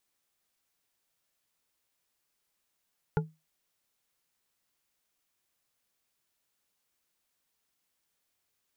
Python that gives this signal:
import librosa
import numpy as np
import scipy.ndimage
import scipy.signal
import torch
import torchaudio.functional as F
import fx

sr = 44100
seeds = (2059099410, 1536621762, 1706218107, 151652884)

y = fx.strike_glass(sr, length_s=0.89, level_db=-21.5, body='bar', hz=158.0, decay_s=0.24, tilt_db=3, modes=4)